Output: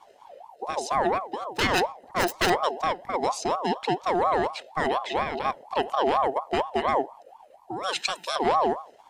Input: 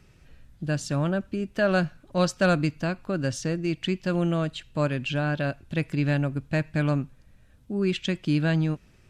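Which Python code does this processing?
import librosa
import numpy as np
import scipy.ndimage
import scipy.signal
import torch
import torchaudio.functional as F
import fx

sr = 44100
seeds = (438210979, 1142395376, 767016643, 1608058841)

p1 = fx.self_delay(x, sr, depth_ms=0.6, at=(1.41, 2.5))
p2 = fx.hum_notches(p1, sr, base_hz=50, count=10)
p3 = p2 + 0.71 * np.pad(p2, (int(0.9 * sr / 1000.0), 0))[:len(p2)]
p4 = fx.level_steps(p3, sr, step_db=13)
p5 = p3 + (p4 * 10.0 ** (-2.0 / 20.0))
p6 = fx.riaa(p5, sr, side='recording', at=(7.83, 8.36))
p7 = fx.ring_lfo(p6, sr, carrier_hz=740.0, swing_pct=30, hz=4.2)
y = p7 * 10.0 ** (-1.5 / 20.0)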